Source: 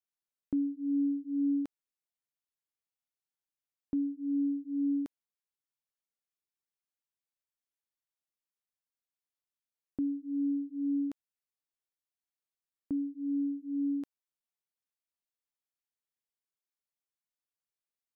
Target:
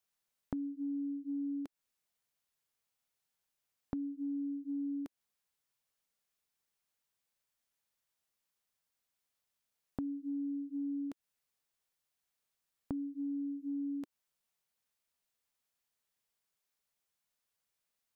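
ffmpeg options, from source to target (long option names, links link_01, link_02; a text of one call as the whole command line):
ffmpeg -i in.wav -af "equalizer=frequency=320:width=4.6:gain=-8,acompressor=threshold=-44dB:ratio=10,volume=8dB" out.wav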